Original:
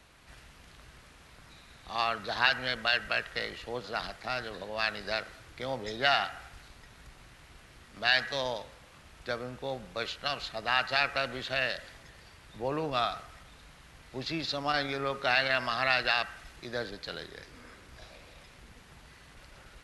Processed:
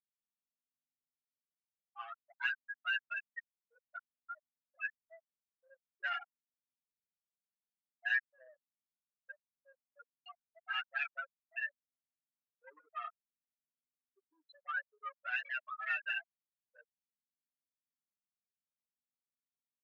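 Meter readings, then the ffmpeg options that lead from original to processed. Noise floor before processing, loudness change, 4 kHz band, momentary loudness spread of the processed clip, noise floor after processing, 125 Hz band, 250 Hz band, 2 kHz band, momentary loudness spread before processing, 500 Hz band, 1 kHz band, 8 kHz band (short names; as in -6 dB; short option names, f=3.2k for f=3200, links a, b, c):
-56 dBFS, -8.5 dB, -18.0 dB, 20 LU, under -85 dBFS, under -40 dB, under -40 dB, -7.5 dB, 18 LU, -28.5 dB, -14.0 dB, under -25 dB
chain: -filter_complex "[0:a]afftfilt=real='re*gte(hypot(re,im),0.158)':imag='im*gte(hypot(re,im),0.158)':win_size=1024:overlap=0.75,aeval=exprs='val(0)+0.000891*(sin(2*PI*50*n/s)+sin(2*PI*2*50*n/s)/2+sin(2*PI*3*50*n/s)/3+sin(2*PI*4*50*n/s)/4+sin(2*PI*5*50*n/s)/5)':c=same,asoftclip=type=tanh:threshold=-27.5dB,asuperpass=centerf=1900:order=4:qfactor=1.4,asplit=2[a][b];[b]adelay=7,afreqshift=0.54[c];[a][c]amix=inputs=2:normalize=1,volume=3dB"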